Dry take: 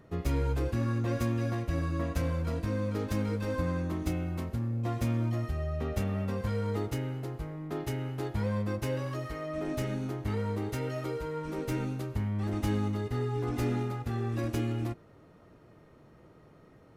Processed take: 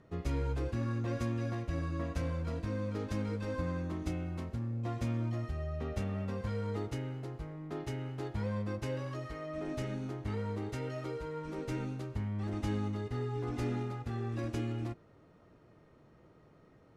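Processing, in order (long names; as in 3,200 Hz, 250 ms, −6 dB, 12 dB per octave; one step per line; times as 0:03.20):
low-pass filter 8,200 Hz 12 dB per octave
level −4.5 dB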